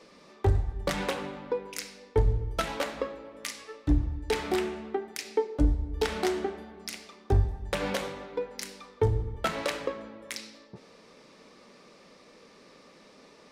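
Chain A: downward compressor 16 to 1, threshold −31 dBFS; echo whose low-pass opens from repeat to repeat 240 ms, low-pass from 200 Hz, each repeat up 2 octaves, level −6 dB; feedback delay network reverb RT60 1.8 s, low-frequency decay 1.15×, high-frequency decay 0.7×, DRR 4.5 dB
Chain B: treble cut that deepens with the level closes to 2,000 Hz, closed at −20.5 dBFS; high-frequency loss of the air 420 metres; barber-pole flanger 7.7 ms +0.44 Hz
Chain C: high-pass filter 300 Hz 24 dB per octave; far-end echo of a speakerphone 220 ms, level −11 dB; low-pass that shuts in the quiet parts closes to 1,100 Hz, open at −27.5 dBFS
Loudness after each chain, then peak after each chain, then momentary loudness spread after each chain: −36.0, −34.5, −34.0 LKFS; −15.5, −14.5, −14.0 dBFS; 17, 18, 12 LU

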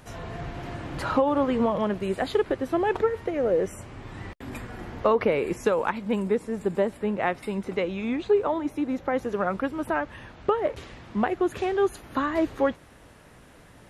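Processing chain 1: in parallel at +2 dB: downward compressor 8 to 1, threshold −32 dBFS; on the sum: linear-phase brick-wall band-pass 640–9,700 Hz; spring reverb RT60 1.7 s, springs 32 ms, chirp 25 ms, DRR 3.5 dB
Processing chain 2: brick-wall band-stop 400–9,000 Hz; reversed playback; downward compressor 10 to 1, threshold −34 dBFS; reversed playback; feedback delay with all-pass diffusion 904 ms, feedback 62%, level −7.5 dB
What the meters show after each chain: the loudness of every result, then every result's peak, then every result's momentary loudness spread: −29.0, −38.5 LKFS; −8.0, −24.5 dBFS; 12, 5 LU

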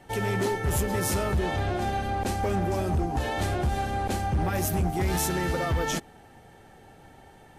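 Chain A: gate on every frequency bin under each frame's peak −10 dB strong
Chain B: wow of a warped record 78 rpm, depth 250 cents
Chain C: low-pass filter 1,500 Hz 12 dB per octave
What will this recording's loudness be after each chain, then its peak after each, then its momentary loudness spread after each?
−29.5, −27.5, −28.5 LKFS; −17.5, −19.0, −19.5 dBFS; 2, 3, 2 LU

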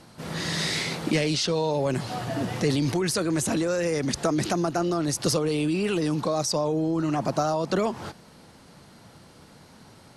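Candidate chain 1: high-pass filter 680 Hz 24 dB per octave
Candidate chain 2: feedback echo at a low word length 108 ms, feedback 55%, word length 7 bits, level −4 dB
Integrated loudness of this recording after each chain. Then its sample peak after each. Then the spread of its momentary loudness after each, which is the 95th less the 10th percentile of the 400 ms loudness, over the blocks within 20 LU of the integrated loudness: −31.0, −24.5 LKFS; −13.0, −10.0 dBFS; 8, 5 LU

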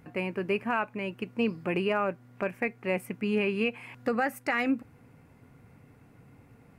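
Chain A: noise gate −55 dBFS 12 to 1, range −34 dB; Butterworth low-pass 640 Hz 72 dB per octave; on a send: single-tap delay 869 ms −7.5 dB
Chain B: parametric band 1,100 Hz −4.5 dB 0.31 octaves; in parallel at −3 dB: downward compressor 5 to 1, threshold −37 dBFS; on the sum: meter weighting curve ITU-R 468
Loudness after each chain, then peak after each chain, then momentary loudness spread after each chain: −32.5, −27.5 LKFS; −17.5, −11.5 dBFS; 9, 10 LU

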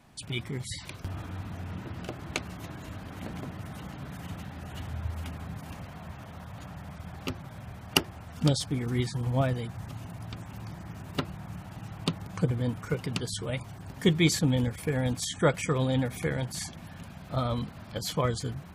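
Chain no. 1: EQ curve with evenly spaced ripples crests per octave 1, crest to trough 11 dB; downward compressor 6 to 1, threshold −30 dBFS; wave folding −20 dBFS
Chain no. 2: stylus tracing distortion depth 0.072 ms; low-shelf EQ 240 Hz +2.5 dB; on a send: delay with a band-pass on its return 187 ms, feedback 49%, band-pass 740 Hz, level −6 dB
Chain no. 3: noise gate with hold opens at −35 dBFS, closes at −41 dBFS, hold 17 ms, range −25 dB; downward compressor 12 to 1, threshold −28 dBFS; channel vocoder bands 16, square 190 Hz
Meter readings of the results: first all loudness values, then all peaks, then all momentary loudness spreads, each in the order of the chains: −37.0, −31.0, −38.5 LKFS; −20.0, −3.0, −15.5 dBFS; 8, 15, 10 LU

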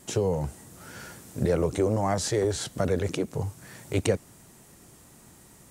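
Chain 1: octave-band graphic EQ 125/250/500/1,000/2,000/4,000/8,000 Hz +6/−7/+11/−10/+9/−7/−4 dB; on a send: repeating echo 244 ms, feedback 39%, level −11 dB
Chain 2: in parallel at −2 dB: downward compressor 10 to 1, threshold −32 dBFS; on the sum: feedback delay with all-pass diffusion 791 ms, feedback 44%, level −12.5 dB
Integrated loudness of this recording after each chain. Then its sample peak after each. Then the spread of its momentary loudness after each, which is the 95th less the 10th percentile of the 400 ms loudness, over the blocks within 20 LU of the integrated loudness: −23.5, −26.5 LKFS; −4.0, −8.0 dBFS; 18, 17 LU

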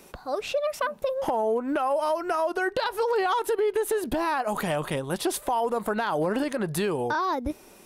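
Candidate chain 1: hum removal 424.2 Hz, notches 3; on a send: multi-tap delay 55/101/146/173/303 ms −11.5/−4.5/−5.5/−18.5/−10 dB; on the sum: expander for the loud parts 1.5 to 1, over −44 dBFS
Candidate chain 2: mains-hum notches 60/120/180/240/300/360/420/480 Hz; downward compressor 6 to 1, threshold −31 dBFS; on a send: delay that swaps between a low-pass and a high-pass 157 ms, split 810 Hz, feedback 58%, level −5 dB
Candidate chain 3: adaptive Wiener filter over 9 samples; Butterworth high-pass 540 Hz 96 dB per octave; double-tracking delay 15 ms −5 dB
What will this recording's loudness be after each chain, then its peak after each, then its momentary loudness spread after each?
−27.5, −33.5, −29.0 LKFS; −11.5, −20.0, −14.5 dBFS; 5, 2, 8 LU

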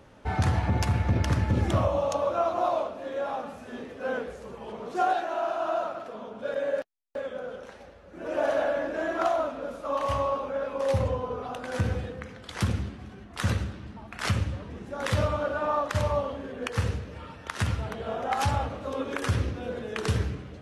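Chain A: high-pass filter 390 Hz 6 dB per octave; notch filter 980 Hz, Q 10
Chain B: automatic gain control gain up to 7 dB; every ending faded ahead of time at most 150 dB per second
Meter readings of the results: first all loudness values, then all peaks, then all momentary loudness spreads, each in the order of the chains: −32.5, −23.0 LKFS; −14.0, −8.0 dBFS; 14, 13 LU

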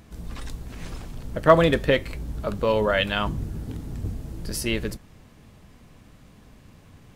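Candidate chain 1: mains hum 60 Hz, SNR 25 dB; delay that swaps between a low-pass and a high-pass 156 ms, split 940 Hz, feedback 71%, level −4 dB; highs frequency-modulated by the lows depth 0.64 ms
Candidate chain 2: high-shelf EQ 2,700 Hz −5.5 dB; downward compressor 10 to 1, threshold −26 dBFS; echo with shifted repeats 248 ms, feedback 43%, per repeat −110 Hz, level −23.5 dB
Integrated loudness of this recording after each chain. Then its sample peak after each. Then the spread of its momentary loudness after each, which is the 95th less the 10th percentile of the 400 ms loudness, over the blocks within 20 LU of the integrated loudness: −23.0, −33.5 LKFS; −2.5, −16.0 dBFS; 20, 22 LU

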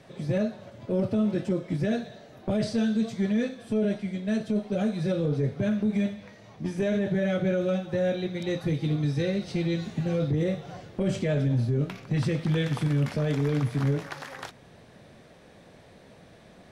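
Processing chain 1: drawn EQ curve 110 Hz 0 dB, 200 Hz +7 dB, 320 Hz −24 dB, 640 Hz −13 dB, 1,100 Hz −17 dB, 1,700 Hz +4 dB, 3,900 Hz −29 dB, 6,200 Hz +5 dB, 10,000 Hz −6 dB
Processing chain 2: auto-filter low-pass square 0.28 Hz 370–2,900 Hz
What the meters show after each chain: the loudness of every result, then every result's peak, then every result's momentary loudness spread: −25.5, −26.0 LKFS; −13.5, −13.0 dBFS; 8, 8 LU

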